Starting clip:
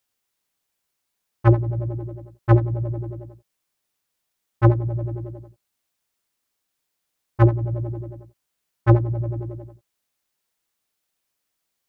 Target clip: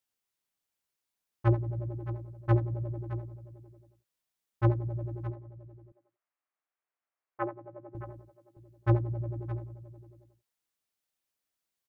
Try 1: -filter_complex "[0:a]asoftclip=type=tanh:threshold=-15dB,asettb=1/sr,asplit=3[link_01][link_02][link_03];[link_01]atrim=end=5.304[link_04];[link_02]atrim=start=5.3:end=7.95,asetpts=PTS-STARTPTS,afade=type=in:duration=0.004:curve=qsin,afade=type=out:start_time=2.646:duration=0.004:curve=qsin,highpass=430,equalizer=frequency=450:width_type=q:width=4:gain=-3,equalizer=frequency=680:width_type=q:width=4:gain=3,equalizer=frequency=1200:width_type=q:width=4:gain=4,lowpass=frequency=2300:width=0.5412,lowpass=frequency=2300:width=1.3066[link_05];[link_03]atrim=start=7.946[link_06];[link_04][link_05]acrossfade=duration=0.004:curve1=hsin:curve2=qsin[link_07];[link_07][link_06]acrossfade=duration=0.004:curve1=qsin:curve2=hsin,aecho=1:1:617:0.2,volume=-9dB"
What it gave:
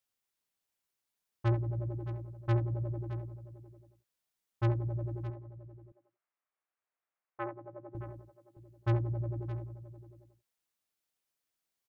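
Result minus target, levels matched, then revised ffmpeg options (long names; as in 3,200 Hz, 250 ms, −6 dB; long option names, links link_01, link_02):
soft clipping: distortion +16 dB
-filter_complex "[0:a]asoftclip=type=tanh:threshold=-3.5dB,asettb=1/sr,asplit=3[link_01][link_02][link_03];[link_01]atrim=end=5.304[link_04];[link_02]atrim=start=5.3:end=7.95,asetpts=PTS-STARTPTS,afade=type=in:duration=0.004:curve=qsin,afade=type=out:start_time=2.646:duration=0.004:curve=qsin,highpass=430,equalizer=frequency=450:width_type=q:width=4:gain=-3,equalizer=frequency=680:width_type=q:width=4:gain=3,equalizer=frequency=1200:width_type=q:width=4:gain=4,lowpass=frequency=2300:width=0.5412,lowpass=frequency=2300:width=1.3066[link_05];[link_03]atrim=start=7.946[link_06];[link_04][link_05]acrossfade=duration=0.004:curve1=hsin:curve2=qsin[link_07];[link_07][link_06]acrossfade=duration=0.004:curve1=qsin:curve2=hsin,aecho=1:1:617:0.2,volume=-9dB"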